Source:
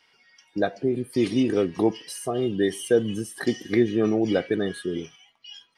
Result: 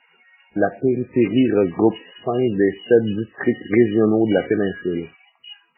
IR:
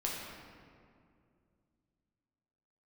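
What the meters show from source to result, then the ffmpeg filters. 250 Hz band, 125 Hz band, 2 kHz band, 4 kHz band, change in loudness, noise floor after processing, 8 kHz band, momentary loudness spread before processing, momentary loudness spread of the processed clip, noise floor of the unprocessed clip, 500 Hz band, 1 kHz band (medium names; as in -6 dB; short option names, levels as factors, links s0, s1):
+5.5 dB, +5.5 dB, +5.5 dB, 0.0 dB, +5.5 dB, -60 dBFS, under -40 dB, 11 LU, 10 LU, -64 dBFS, +5.5 dB, +5.5 dB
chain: -af "volume=2" -ar 11025 -c:a libmp3lame -b:a 8k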